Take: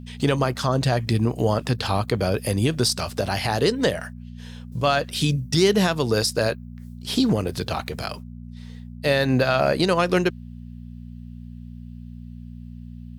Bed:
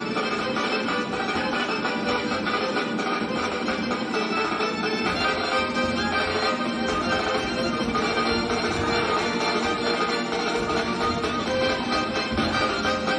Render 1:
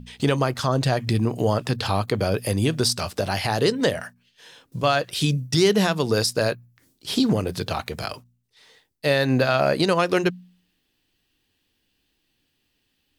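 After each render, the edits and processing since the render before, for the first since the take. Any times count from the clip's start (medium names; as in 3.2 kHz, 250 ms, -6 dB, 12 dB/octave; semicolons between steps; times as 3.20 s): de-hum 60 Hz, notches 4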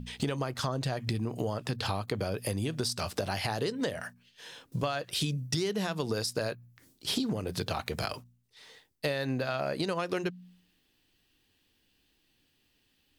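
compression 10:1, threshold -28 dBFS, peak gain reduction 14.5 dB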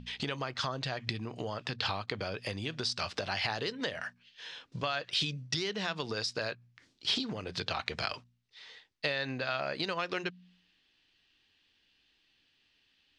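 Bessel low-pass 3.6 kHz, order 4; tilt shelf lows -7.5 dB, about 1.1 kHz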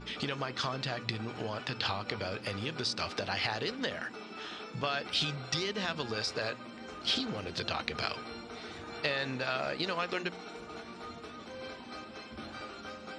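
add bed -20.5 dB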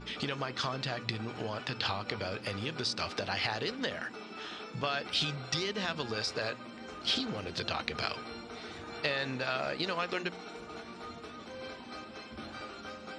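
no audible change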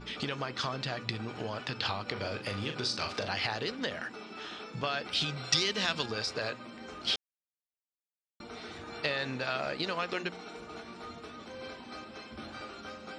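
2.12–3.31 s: doubling 40 ms -7 dB; 5.36–6.06 s: treble shelf 2.1 kHz +9 dB; 7.16–8.40 s: mute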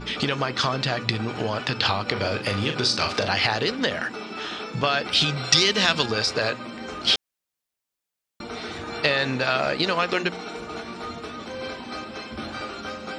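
trim +10.5 dB; peak limiter -3 dBFS, peak gain reduction 2 dB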